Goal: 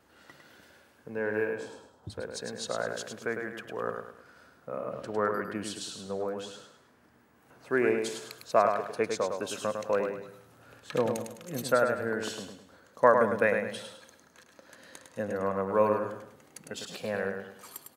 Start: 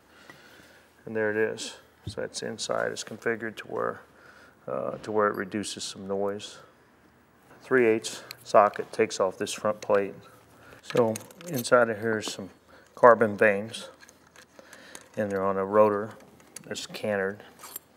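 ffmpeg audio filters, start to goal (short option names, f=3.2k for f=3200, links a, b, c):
-filter_complex "[0:a]asettb=1/sr,asplit=3[a][b][c];[a]atrim=end=1.494[d];[b]atrim=start=1.49:end=2.1,asetpts=PTS-STARTPTS,afade=t=in:d=0.004:c=qsin,afade=t=out:st=0.606:d=0.004:c=qsin,highshelf=f=1.5k:t=q:w=1.5:g=-11.5[e];[c]atrim=start=2.096[f];[d][e]acrossfade=d=0.004:c1=hsin:c2=qsin[g];[g][f]acrossfade=d=0.004:c1=qsin:c2=hsin,asplit=2[h][i];[i]aecho=0:1:104|208|312|416:0.531|0.196|0.0727|0.0269[j];[h][j]amix=inputs=2:normalize=0,volume=-5dB"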